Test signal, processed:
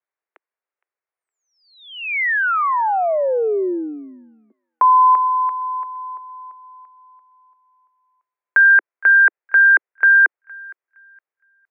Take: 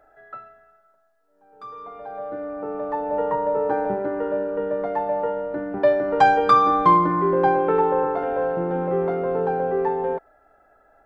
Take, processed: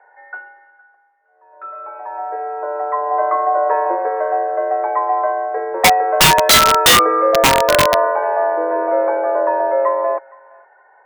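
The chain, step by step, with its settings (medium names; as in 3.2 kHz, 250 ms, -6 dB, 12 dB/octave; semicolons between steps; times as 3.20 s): thinning echo 464 ms, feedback 29%, high-pass 950 Hz, level -21.5 dB; mistuned SSB +150 Hz 200–2100 Hz; integer overflow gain 11 dB; trim +6.5 dB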